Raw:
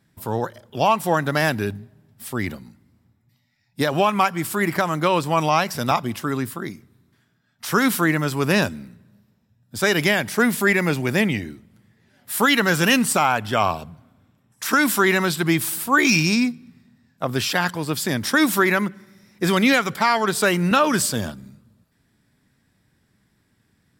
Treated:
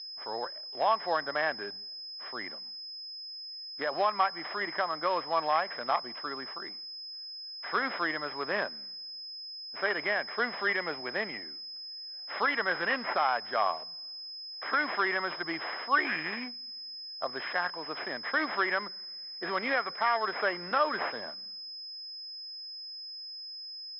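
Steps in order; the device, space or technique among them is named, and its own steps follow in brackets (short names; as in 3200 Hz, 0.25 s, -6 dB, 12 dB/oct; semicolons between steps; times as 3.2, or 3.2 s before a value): toy sound module (decimation joined by straight lines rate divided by 6×; pulse-width modulation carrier 5100 Hz; speaker cabinet 790–4100 Hz, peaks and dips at 910 Hz -5 dB, 1400 Hz -5 dB, 2600 Hz -10 dB, 3800 Hz -5 dB); gain -2 dB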